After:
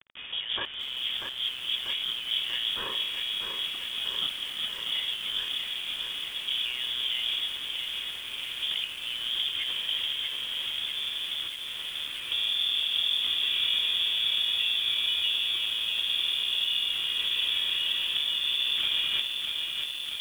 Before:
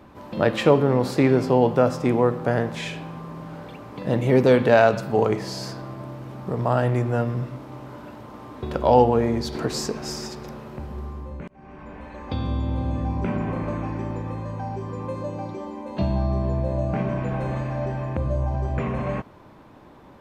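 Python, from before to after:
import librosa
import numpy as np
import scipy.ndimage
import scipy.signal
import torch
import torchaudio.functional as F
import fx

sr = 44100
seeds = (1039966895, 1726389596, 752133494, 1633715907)

y = fx.octave_divider(x, sr, octaves=2, level_db=-2.0)
y = scipy.signal.sosfilt(scipy.signal.butter(4, 70.0, 'highpass', fs=sr, output='sos'), y)
y = fx.hum_notches(y, sr, base_hz=60, count=7)
y = fx.over_compress(y, sr, threshold_db=-27.0, ratio=-1.0)
y = fx.quant_dither(y, sr, seeds[0], bits=6, dither='none')
y = np.repeat(scipy.signal.resample_poly(y, 1, 8), 8)[:len(y)]
y = fx.freq_invert(y, sr, carrier_hz=3500)
y = fx.echo_crushed(y, sr, ms=640, feedback_pct=80, bits=7, wet_db=-5.0)
y = y * librosa.db_to_amplitude(-5.0)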